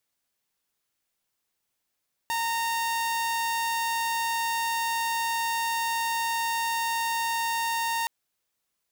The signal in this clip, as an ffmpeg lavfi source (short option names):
-f lavfi -i "aevalsrc='0.0708*(2*mod(921*t,1)-1)':d=5.77:s=44100"